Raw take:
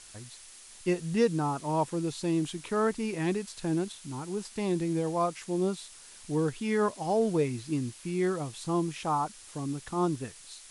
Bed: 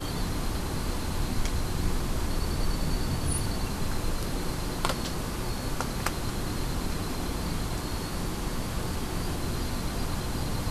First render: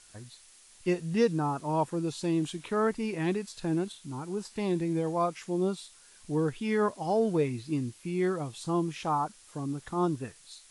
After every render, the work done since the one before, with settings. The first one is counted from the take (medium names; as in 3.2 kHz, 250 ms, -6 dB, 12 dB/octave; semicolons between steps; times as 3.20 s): noise print and reduce 6 dB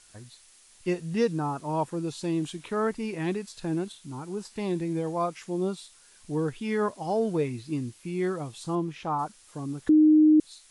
8.75–9.19 s: treble shelf 4.8 kHz -12 dB; 9.89–10.40 s: bleep 308 Hz -14 dBFS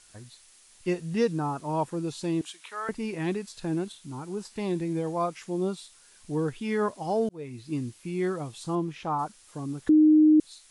2.41–2.89 s: high-pass 1.1 kHz; 7.29–7.77 s: fade in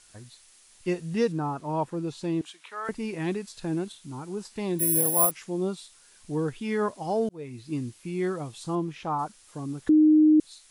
1.32–2.85 s: treble shelf 4.8 kHz -8 dB; 4.79–5.31 s: careless resampling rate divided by 4×, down none, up zero stuff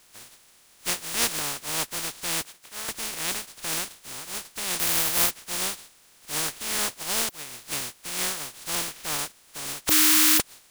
spectral contrast reduction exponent 0.13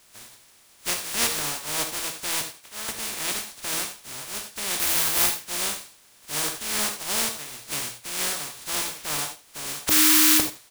delay 75 ms -15 dB; gated-style reverb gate 110 ms flat, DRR 5 dB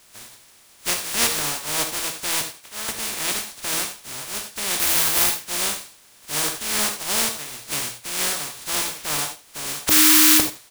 trim +3.5 dB; peak limiter -1 dBFS, peak gain reduction 2.5 dB